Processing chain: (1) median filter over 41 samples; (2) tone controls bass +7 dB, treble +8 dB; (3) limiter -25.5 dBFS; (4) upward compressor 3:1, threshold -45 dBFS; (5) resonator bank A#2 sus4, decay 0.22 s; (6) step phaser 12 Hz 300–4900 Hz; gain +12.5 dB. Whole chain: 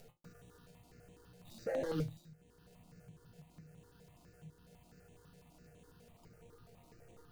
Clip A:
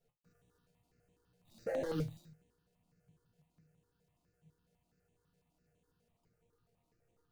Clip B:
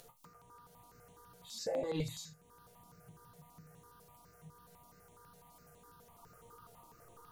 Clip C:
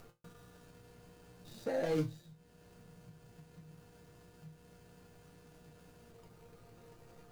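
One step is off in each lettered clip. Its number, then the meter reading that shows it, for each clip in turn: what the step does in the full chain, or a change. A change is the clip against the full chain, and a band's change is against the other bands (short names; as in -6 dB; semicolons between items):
4, momentary loudness spread change -11 LU; 1, 8 kHz band +11.5 dB; 6, 125 Hz band -2.0 dB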